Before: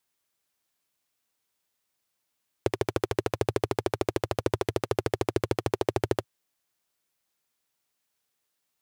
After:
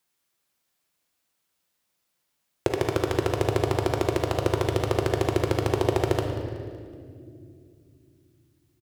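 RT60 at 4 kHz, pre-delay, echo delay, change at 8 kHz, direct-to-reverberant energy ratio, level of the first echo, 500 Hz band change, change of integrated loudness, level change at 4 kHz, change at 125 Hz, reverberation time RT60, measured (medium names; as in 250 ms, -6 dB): 1.6 s, 6 ms, 187 ms, +3.0 dB, 2.5 dB, -16.5 dB, +3.5 dB, +4.0 dB, +4.0 dB, +7.0 dB, 2.3 s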